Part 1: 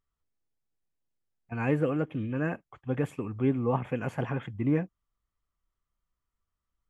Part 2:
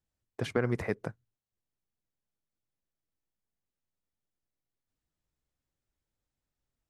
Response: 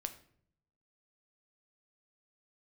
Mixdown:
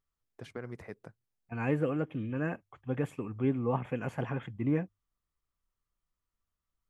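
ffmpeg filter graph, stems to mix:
-filter_complex "[0:a]bandreject=f=50:t=h:w=6,bandreject=f=100:t=h:w=6,volume=-3dB[a];[1:a]volume=-12.5dB[b];[a][b]amix=inputs=2:normalize=0"

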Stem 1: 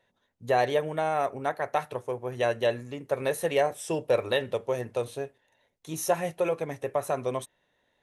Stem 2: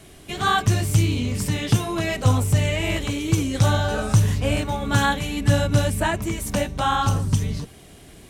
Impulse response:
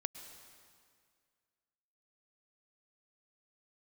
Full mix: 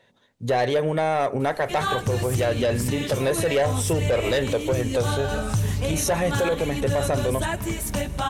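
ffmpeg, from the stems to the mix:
-filter_complex "[0:a]equalizer=f=125:t=o:w=1:g=9,equalizer=f=250:t=o:w=1:g=6,equalizer=f=500:t=o:w=1:g=6,equalizer=f=1k:t=o:w=1:g=3,equalizer=f=2k:t=o:w=1:g=5,equalizer=f=4k:t=o:w=1:g=7,equalizer=f=8k:t=o:w=1:g=6,dynaudnorm=f=110:g=17:m=5.5dB,asoftclip=type=tanh:threshold=-10.5dB,volume=-1.5dB[a];[1:a]equalizer=f=13k:t=o:w=0.75:g=4,flanger=delay=0.1:depth=2.7:regen=72:speed=1.5:shape=triangular,adelay=1400,volume=-5dB,asplit=2[b][c];[c]volume=-5.5dB[d];[2:a]atrim=start_sample=2205[e];[d][e]afir=irnorm=-1:irlink=0[f];[a][b][f]amix=inputs=3:normalize=0,acontrast=32,alimiter=limit=-15dB:level=0:latency=1:release=118"

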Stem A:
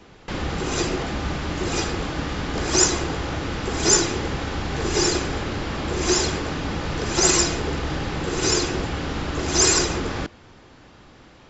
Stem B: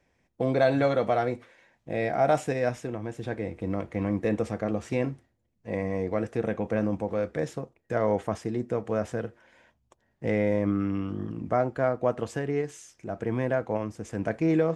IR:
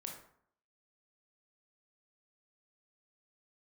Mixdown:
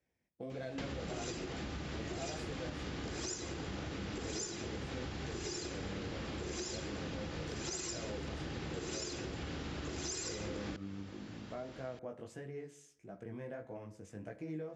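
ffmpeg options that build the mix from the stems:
-filter_complex "[0:a]acompressor=threshold=-30dB:ratio=6,adelay=500,volume=-1dB[a];[1:a]flanger=delay=15.5:depth=5.7:speed=1.6,volume=-12.5dB,asplit=2[b][c];[c]volume=-6dB[d];[2:a]atrim=start_sample=2205[e];[d][e]afir=irnorm=-1:irlink=0[f];[a][b][f]amix=inputs=3:normalize=0,highpass=56,equalizer=f=1k:t=o:w=1.3:g=-5,acompressor=threshold=-43dB:ratio=2"

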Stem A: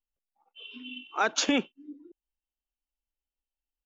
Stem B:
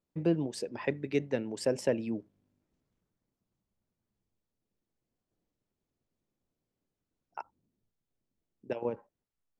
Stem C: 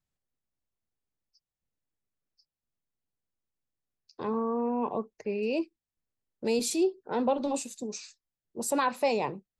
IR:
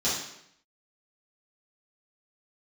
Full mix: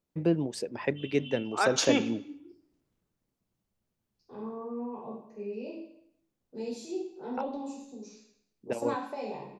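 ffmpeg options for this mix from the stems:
-filter_complex "[0:a]adelay=400,volume=-2dB,asplit=2[a][b];[b]volume=-20dB[c];[1:a]volume=2dB,asplit=2[d][e];[2:a]lowpass=f=3k:p=1,adelay=100,volume=-10.5dB,asplit=2[f][g];[g]volume=-11.5dB[h];[e]apad=whole_len=427510[i];[f][i]sidechaingate=range=-14dB:threshold=-57dB:ratio=16:detection=peak[j];[3:a]atrim=start_sample=2205[k];[c][h]amix=inputs=2:normalize=0[l];[l][k]afir=irnorm=-1:irlink=0[m];[a][d][j][m]amix=inputs=4:normalize=0"

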